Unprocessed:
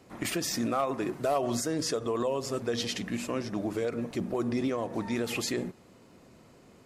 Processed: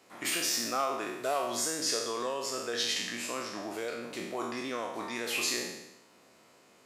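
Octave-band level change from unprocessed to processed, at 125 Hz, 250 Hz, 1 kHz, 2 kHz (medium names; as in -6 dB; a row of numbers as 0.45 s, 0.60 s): -15.0 dB, -9.0 dB, 0.0 dB, +3.5 dB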